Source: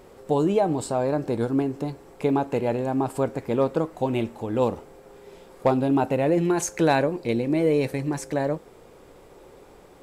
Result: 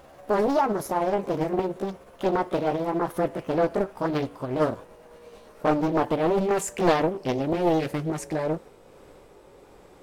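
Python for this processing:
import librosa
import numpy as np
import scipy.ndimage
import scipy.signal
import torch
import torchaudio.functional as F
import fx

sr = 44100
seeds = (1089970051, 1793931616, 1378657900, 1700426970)

y = fx.pitch_glide(x, sr, semitones=6.0, runs='ending unshifted')
y = fx.doppler_dist(y, sr, depth_ms=0.87)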